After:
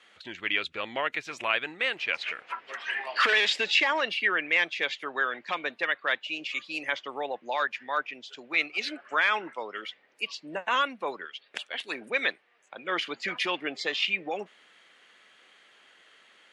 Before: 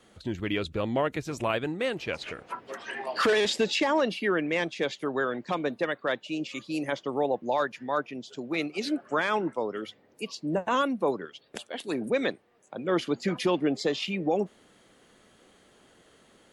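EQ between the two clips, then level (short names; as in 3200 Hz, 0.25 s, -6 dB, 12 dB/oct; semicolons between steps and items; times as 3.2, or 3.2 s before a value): band-pass 2300 Hz, Q 1.4; +8.5 dB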